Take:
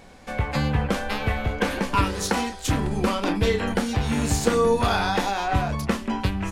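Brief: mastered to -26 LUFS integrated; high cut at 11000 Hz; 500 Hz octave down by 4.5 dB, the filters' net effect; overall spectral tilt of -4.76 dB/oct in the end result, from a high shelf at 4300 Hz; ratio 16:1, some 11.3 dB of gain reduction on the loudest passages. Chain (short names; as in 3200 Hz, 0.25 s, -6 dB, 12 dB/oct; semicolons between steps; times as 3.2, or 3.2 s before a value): LPF 11000 Hz; bell 500 Hz -5 dB; high shelf 4300 Hz -8 dB; compressor 16:1, threshold -29 dBFS; gain +8.5 dB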